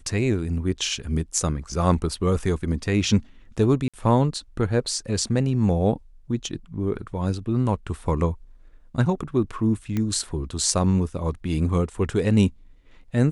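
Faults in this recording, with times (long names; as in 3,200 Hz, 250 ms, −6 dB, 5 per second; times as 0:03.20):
0:03.88–0:03.94: drop-out 56 ms
0:09.97: click −14 dBFS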